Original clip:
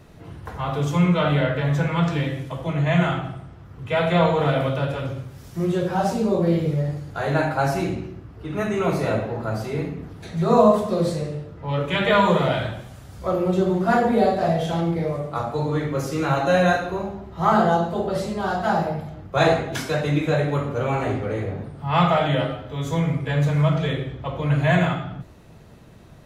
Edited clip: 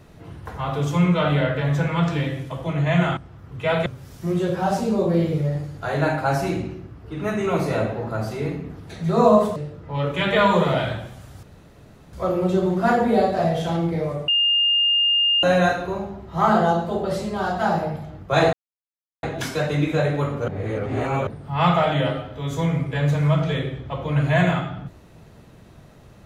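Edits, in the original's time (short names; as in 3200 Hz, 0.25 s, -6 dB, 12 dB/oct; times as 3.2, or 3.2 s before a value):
3.17–3.44 cut
4.13–5.19 cut
10.89–11.3 cut
13.17 insert room tone 0.70 s
15.32–16.47 bleep 2820 Hz -15.5 dBFS
19.57 insert silence 0.70 s
20.82–21.61 reverse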